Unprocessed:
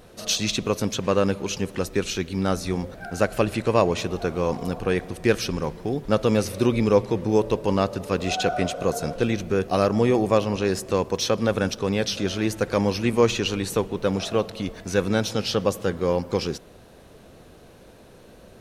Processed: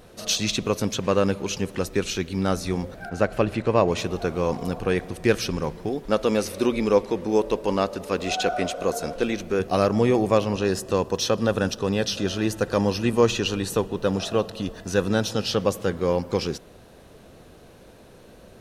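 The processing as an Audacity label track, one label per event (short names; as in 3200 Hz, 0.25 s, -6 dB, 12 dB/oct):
3.090000	3.880000	LPF 2800 Hz 6 dB/oct
5.890000	9.600000	bell 120 Hz -14 dB
10.530000	15.510000	Butterworth band-stop 2200 Hz, Q 6.6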